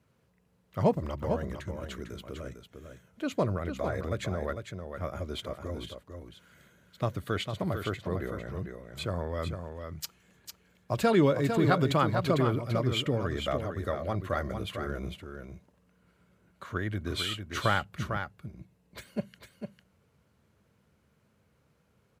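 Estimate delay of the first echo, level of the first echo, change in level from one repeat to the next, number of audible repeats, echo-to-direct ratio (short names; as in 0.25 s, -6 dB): 0.451 s, -7.0 dB, no steady repeat, 1, -7.0 dB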